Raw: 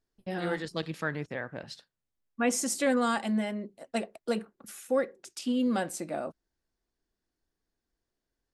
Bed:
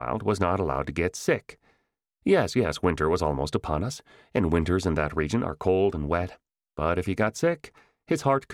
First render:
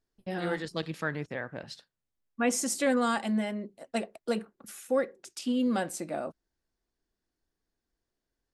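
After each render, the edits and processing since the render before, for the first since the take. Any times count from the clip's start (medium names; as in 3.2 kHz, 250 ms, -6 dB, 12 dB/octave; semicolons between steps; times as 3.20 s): no audible change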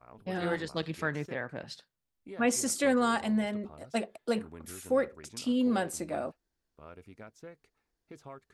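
add bed -24.5 dB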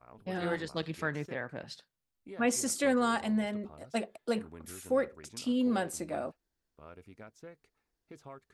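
trim -1.5 dB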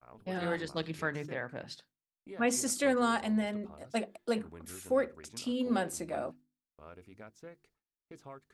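gate with hold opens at -54 dBFS; hum notches 50/100/150/200/250/300/350 Hz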